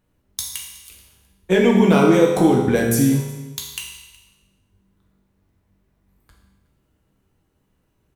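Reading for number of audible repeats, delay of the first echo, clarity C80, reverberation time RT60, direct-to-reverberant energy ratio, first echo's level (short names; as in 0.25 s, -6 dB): 1, 0.368 s, 5.5 dB, 1.2 s, -1.5 dB, -22.0 dB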